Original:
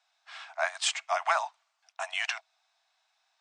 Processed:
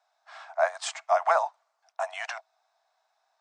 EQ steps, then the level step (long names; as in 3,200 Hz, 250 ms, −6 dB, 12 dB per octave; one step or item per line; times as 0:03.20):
high-pass with resonance 480 Hz, resonance Q 4.9
parametric band 2,800 Hz −10.5 dB 1.2 octaves
high-shelf EQ 5,800 Hz −9.5 dB
+3.0 dB